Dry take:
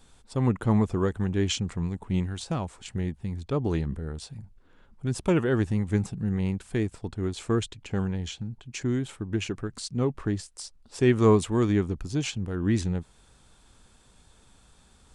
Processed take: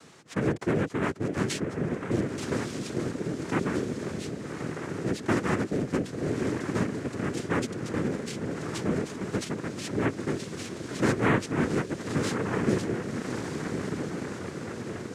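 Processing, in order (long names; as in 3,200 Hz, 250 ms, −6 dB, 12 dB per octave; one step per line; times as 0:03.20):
feedback delay with all-pass diffusion 1,194 ms, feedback 53%, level −8 dB
cochlear-implant simulation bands 3
multiband upward and downward compressor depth 40%
level −2 dB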